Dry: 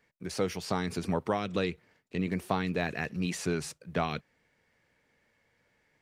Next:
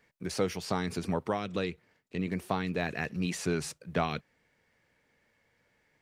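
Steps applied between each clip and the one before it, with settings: gain riding within 4 dB 0.5 s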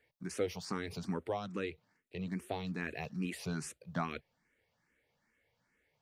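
barber-pole phaser +2.4 Hz; trim -3.5 dB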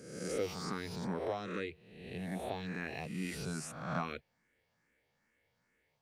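reverse spectral sustain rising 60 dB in 0.97 s; trim -3 dB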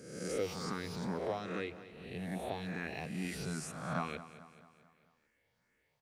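feedback delay 220 ms, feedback 52%, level -14.5 dB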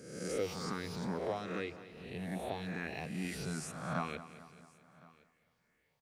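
delay 1064 ms -24 dB

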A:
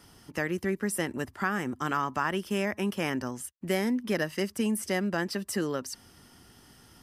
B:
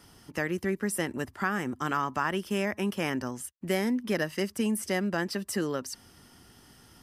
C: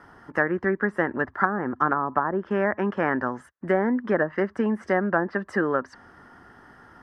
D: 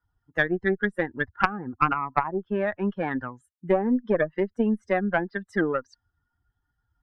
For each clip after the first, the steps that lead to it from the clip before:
no audible change
FFT filter 120 Hz 0 dB, 1.7 kHz +14 dB, 2.5 kHz -6 dB, 13 kHz -19 dB; low-pass that closes with the level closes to 690 Hz, closed at -14.5 dBFS
expander on every frequency bin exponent 2; valve stage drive 12 dB, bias 0.75; tape noise reduction on one side only decoder only; trim +7.5 dB

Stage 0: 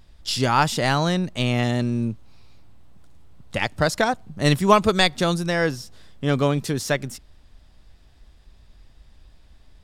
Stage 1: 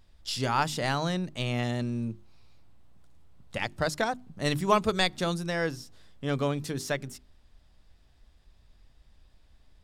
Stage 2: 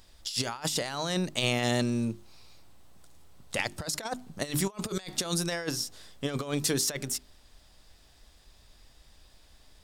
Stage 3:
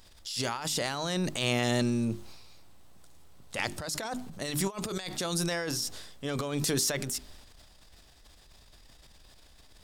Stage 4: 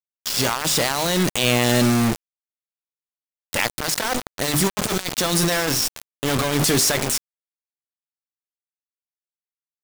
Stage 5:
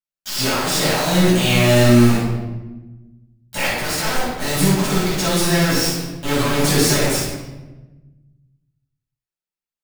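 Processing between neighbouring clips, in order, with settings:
hum notches 50/100/150/200/250/300/350/400 Hz; trim -7.5 dB
tone controls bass -7 dB, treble +8 dB; compressor with a negative ratio -33 dBFS, ratio -0.5; trim +3 dB
transient shaper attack -6 dB, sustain +7 dB
in parallel at -0.5 dB: compression 16:1, threshold -39 dBFS, peak gain reduction 16.5 dB; on the sum: bit crusher 5-bit; trim +8 dB
reverberation RT60 1.2 s, pre-delay 5 ms, DRR -12 dB; trim -12 dB

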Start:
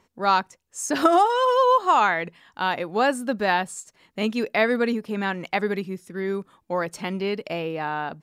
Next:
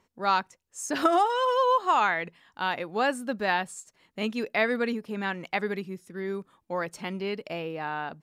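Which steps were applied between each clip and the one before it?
dynamic bell 2.3 kHz, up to +3 dB, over -32 dBFS, Q 0.81; trim -5.5 dB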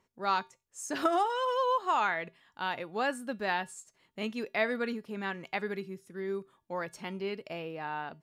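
feedback comb 130 Hz, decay 0.25 s, harmonics odd, mix 50%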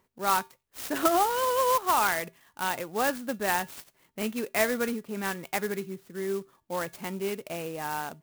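sampling jitter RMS 0.051 ms; trim +4 dB

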